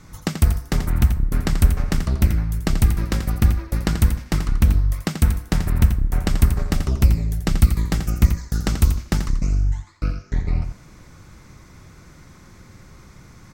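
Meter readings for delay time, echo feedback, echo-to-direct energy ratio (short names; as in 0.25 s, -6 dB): 85 ms, no steady repeat, -8.5 dB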